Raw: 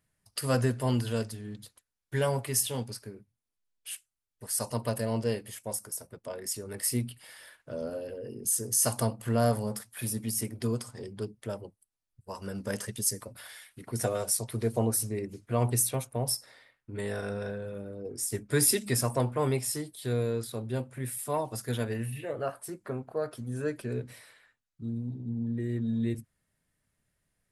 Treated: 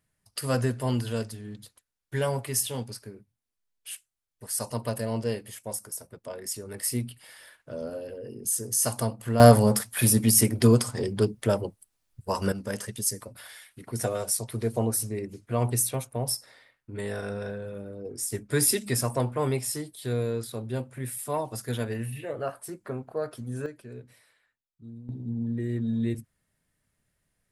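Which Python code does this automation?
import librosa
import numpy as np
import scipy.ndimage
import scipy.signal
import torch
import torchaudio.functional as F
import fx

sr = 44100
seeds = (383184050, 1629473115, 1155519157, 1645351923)

y = fx.gain(x, sr, db=fx.steps((0.0, 0.5), (9.4, 12.0), (12.52, 1.0), (23.66, -9.0), (25.09, 2.0)))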